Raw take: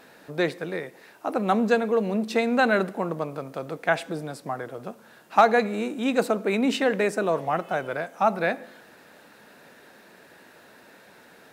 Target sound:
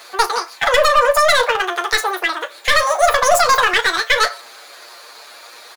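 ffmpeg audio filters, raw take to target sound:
-filter_complex "[0:a]highpass=120,aeval=exprs='clip(val(0),-1,0.0631)':c=same,asetrate=57191,aresample=44100,atempo=0.771105,asplit=2[a][b];[b]adelay=32,volume=-14dB[c];[a][c]amix=inputs=2:normalize=0,aecho=1:1:17|72:0.668|0.211,asetrate=88200,aresample=44100,alimiter=level_in=11.5dB:limit=-1dB:release=50:level=0:latency=1,volume=-1dB"

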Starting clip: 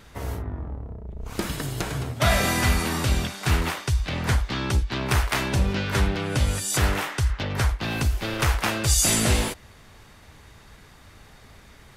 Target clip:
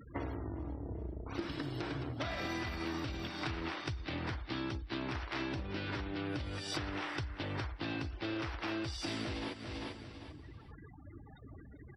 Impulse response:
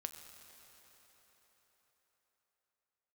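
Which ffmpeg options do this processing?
-filter_complex "[0:a]alimiter=limit=-17dB:level=0:latency=1:release=34,acrossover=split=6700[a][b];[b]acompressor=threshold=-48dB:ratio=4:attack=1:release=60[c];[a][c]amix=inputs=2:normalize=0,afftfilt=real='re*gte(hypot(re,im),0.00794)':imag='im*gte(hypot(re,im),0.00794)':win_size=1024:overlap=0.75,superequalizer=6b=2.82:15b=0.282:16b=0.282,aecho=1:1:394|788|1182:0.168|0.0487|0.0141,acompressor=threshold=-36dB:ratio=12,highpass=73,equalizer=f=190:t=o:w=0.88:g=-4,bandreject=f=6.8k:w=6.1,aeval=exprs='(tanh(15.8*val(0)+0.2)-tanh(0.2))/15.8':c=same,volume=2.5dB"

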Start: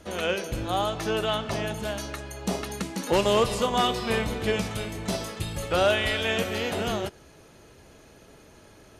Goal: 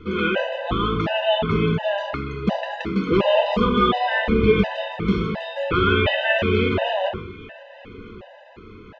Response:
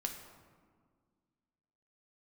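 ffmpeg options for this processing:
-filter_complex "[0:a]lowpass=f=3.1k:w=0.5412,lowpass=f=3.1k:w=1.3066,asplit=2[a][b];[b]alimiter=limit=-22dB:level=0:latency=1,volume=-1.5dB[c];[a][c]amix=inputs=2:normalize=0,aecho=1:1:1195:0.0708[d];[1:a]atrim=start_sample=2205,afade=t=out:st=0.32:d=0.01,atrim=end_sample=14553[e];[d][e]afir=irnorm=-1:irlink=0,afftfilt=real='re*gt(sin(2*PI*1.4*pts/sr)*(1-2*mod(floor(b*sr/1024/510),2)),0)':imag='im*gt(sin(2*PI*1.4*pts/sr)*(1-2*mod(floor(b*sr/1024/510),2)),0)':win_size=1024:overlap=0.75,volume=6dB"

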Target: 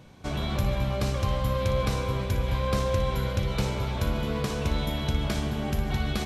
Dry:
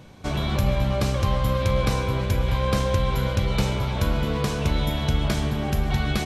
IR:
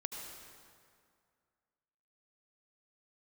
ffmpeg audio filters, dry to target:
-filter_complex "[0:a]asplit=2[a][b];[1:a]atrim=start_sample=2205,afade=t=out:st=0.39:d=0.01,atrim=end_sample=17640,adelay=59[c];[b][c]afir=irnorm=-1:irlink=0,volume=-8.5dB[d];[a][d]amix=inputs=2:normalize=0,volume=-4.5dB"

